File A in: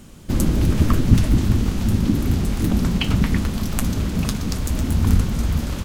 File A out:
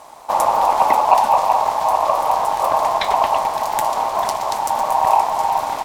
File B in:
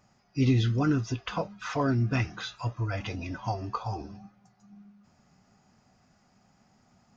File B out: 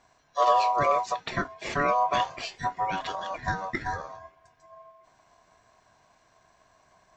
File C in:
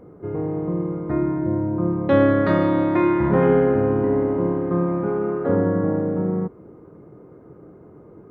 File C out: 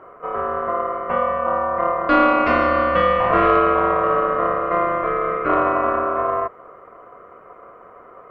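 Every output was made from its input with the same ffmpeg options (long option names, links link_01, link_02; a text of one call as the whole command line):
ffmpeg -i in.wav -af "aeval=exprs='val(0)*sin(2*PI*860*n/s)':channel_layout=same,acontrast=39,volume=-1dB" out.wav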